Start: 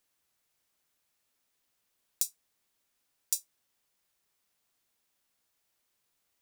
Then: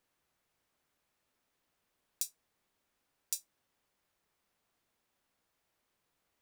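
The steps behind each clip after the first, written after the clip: treble shelf 2.9 kHz -11.5 dB; trim +4.5 dB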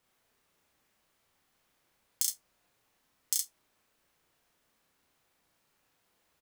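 ring modulator 510 Hz; loudspeakers at several distances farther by 11 m -2 dB, 23 m -3 dB; trim +6.5 dB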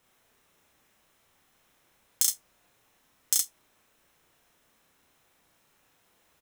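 band-stop 4.6 kHz, Q 9; in parallel at -9.5 dB: integer overflow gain 17.5 dB; on the sum: trim +4.5 dB

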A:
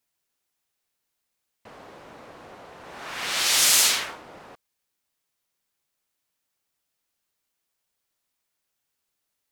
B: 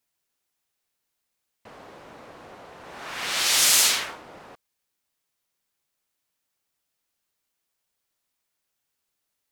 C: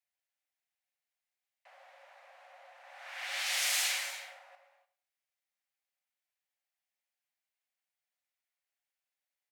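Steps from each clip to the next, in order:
no audible change
rippled Chebyshev high-pass 530 Hz, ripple 9 dB; feedback delay 99 ms, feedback 26%, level -15 dB; gated-style reverb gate 320 ms flat, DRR 7 dB; trim -6.5 dB

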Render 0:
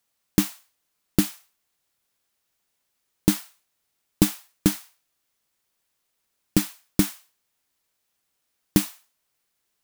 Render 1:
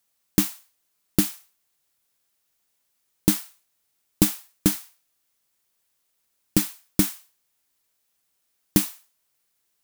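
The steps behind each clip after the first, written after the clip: treble shelf 6.1 kHz +5.5 dB; trim -1 dB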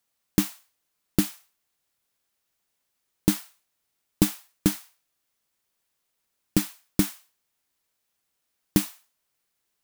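treble shelf 5 kHz -5 dB; trim -1 dB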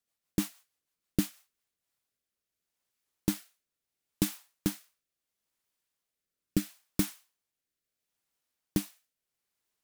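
rotary cabinet horn 6.3 Hz, later 0.75 Hz, at 1.21 s; trim -5 dB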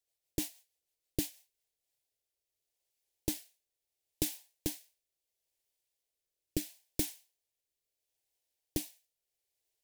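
static phaser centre 520 Hz, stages 4

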